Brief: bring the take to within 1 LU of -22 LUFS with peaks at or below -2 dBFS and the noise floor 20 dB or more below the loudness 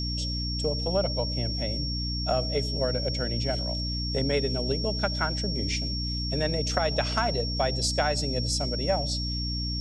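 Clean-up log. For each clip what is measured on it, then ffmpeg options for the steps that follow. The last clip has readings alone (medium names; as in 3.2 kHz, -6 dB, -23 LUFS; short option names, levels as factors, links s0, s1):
hum 60 Hz; highest harmonic 300 Hz; hum level -29 dBFS; steady tone 5.5 kHz; tone level -32 dBFS; loudness -27.5 LUFS; peak level -9.0 dBFS; loudness target -22.0 LUFS
-> -af "bandreject=f=60:t=h:w=4,bandreject=f=120:t=h:w=4,bandreject=f=180:t=h:w=4,bandreject=f=240:t=h:w=4,bandreject=f=300:t=h:w=4"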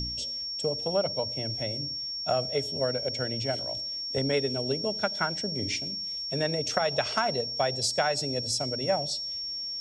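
hum not found; steady tone 5.5 kHz; tone level -32 dBFS
-> -af "bandreject=f=5500:w=30"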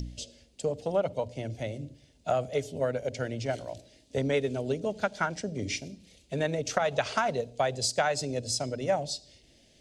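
steady tone not found; loudness -31.0 LUFS; peak level -10.0 dBFS; loudness target -22.0 LUFS
-> -af "volume=2.82,alimiter=limit=0.794:level=0:latency=1"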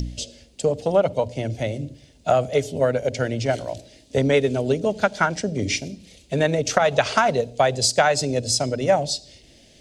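loudness -22.0 LUFS; peak level -2.0 dBFS; noise floor -53 dBFS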